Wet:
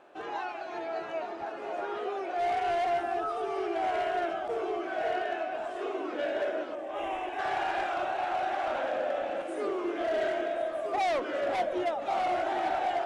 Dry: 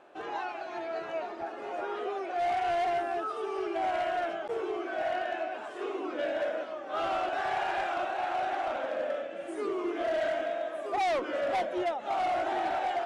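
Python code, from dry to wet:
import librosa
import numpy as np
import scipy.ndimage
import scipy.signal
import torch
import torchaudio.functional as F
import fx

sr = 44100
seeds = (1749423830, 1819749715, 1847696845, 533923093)

y = fx.fixed_phaser(x, sr, hz=910.0, stages=8, at=(6.75, 7.39))
y = fx.echo_alternate(y, sr, ms=539, hz=820.0, feedback_pct=55, wet_db=-7)
y = fx.env_flatten(y, sr, amount_pct=50, at=(8.59, 9.42))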